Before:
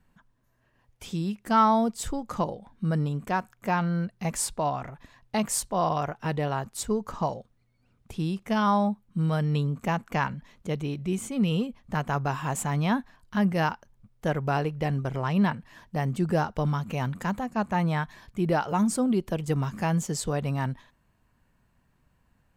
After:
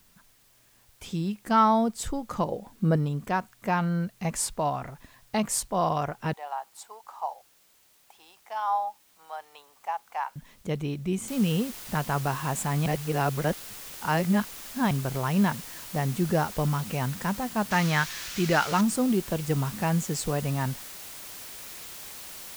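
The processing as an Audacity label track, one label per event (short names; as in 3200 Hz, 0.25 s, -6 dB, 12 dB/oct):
2.520000	2.960000	bell 410 Hz +8.5 dB 2 oct
6.330000	10.360000	ladder high-pass 740 Hz, resonance 70%
11.280000	11.280000	noise floor step -62 dB -42 dB
12.860000	14.910000	reverse
17.710000	18.810000	band shelf 2900 Hz +8.5 dB 2.7 oct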